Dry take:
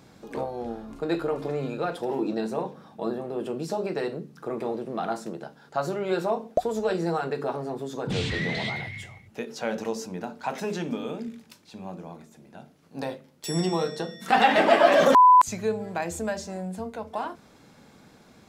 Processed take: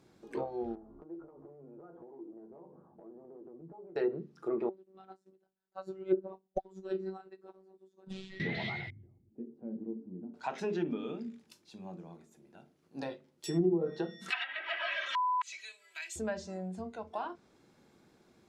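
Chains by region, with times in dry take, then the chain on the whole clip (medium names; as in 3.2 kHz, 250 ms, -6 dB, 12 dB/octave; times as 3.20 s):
0.75–3.96 s: low-pass 1.1 kHz 24 dB/octave + compression 20:1, threshold -39 dBFS + doubling 12 ms -6 dB
4.69–8.40 s: bass shelf 100 Hz +9 dB + robot voice 190 Hz + upward expansion 2.5:1, over -39 dBFS
8.90–10.34 s: resonant low-pass 270 Hz, resonance Q 2.6 + peaking EQ 180 Hz -7 dB 2.2 oct
14.30–16.16 s: resonant high-pass 2.5 kHz, resonance Q 1.6 + band-stop 4.8 kHz, Q 27 + comb 3.1 ms, depth 80%
whole clip: peaking EQ 360 Hz +10 dB 0.3 oct; low-pass that closes with the level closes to 430 Hz, closed at -16.5 dBFS; spectral noise reduction 6 dB; trim -6.5 dB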